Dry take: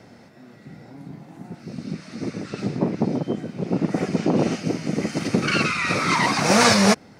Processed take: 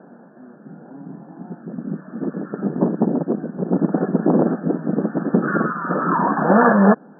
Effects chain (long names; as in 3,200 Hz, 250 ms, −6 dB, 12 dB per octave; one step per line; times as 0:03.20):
linear-phase brick-wall band-pass 150–1,800 Hz
high-frequency loss of the air 370 metres
level +5 dB